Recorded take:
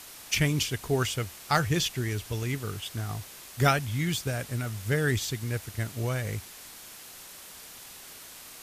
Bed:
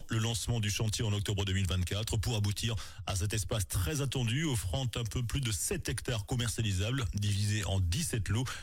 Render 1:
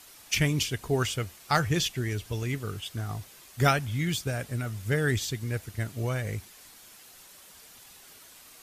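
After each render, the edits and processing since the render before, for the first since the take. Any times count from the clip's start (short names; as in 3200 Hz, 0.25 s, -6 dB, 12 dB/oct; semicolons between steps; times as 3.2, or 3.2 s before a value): denoiser 7 dB, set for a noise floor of -47 dBFS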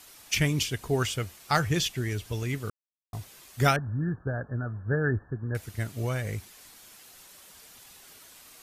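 2.7–3.13 mute; 3.76–5.55 brick-wall FIR low-pass 1800 Hz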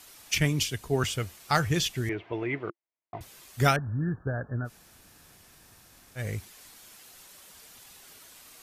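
0.38–1.04 three-band expander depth 40%; 2.09–3.21 speaker cabinet 190–2700 Hz, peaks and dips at 230 Hz -6 dB, 340 Hz +10 dB, 670 Hz +9 dB, 940 Hz +6 dB, 2100 Hz +6 dB; 4.67–6.18 room tone, crossfade 0.06 s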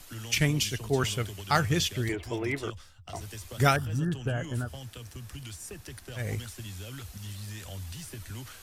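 add bed -9 dB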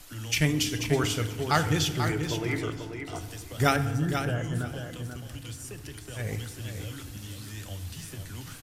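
feedback echo 0.487 s, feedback 16%, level -7.5 dB; FDN reverb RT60 1.3 s, low-frequency decay 1.6×, high-frequency decay 0.5×, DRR 9.5 dB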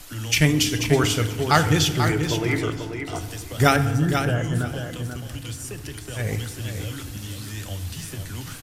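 gain +6.5 dB; limiter -3 dBFS, peak gain reduction 1.5 dB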